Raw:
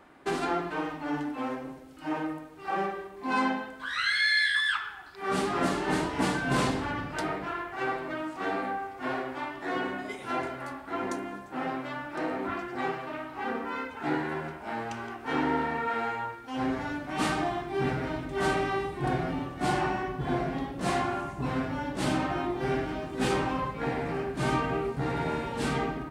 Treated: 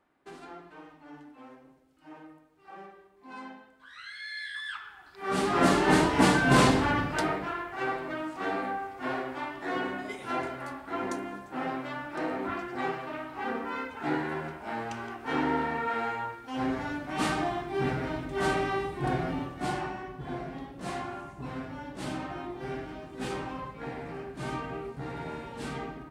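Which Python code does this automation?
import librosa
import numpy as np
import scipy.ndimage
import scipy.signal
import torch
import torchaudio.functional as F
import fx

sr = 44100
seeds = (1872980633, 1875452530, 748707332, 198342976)

y = fx.gain(x, sr, db=fx.line((4.17, -16.5), (5.02, -6.0), (5.71, 6.0), (6.97, 6.0), (7.57, -0.5), (19.42, -0.5), (19.94, -7.5)))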